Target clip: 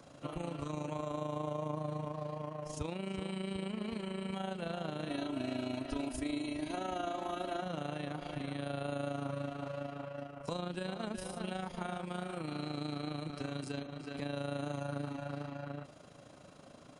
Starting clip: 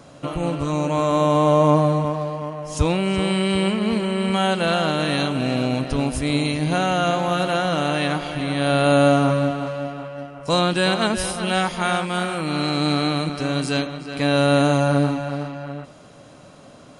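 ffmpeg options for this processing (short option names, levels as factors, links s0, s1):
-filter_complex "[0:a]acrossover=split=110|880[s0][s1][s2];[s0]acompressor=threshold=0.00794:ratio=4[s3];[s1]acompressor=threshold=0.0355:ratio=4[s4];[s2]acompressor=threshold=0.0126:ratio=4[s5];[s3][s4][s5]amix=inputs=3:normalize=0,tremolo=f=27:d=0.621,asettb=1/sr,asplit=3[s6][s7][s8];[s6]atrim=end=5.094[s9];[s7]atrim=start=5.09:end=7.62,asetpts=PTS-STARTPTS,afade=t=in:d=0.004:c=qsin,afade=t=out:st=2.526:d=0.004:c=qsin,aecho=1:1:3.1:0.86,atrim=end_sample=111573[s10];[s8]atrim=start=7.616[s11];[s9][s10]acrossfade=d=0.004:c1=hsin:c2=qsin[s12];[s12][s11]acrossfade=d=0.004:c1=qsin:c2=hsin,volume=0.422"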